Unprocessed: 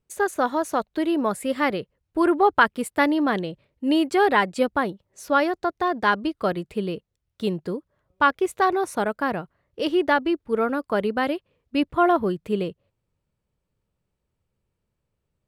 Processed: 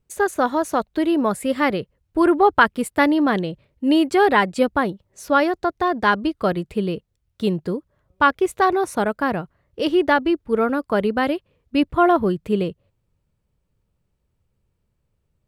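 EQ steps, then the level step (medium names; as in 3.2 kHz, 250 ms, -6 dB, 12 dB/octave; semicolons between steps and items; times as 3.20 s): bass shelf 150 Hz +7 dB; +2.5 dB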